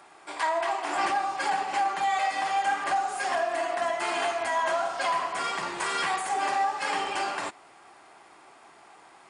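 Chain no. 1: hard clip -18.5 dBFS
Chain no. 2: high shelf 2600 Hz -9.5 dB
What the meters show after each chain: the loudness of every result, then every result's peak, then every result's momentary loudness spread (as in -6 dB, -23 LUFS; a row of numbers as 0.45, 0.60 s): -28.0, -29.5 LUFS; -18.5, -17.0 dBFS; 4, 5 LU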